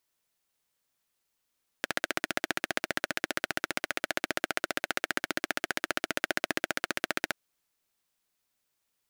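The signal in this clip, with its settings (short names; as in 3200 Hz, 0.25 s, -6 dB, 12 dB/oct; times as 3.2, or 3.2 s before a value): single-cylinder engine model, steady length 5.48 s, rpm 1800, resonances 340/620/1500 Hz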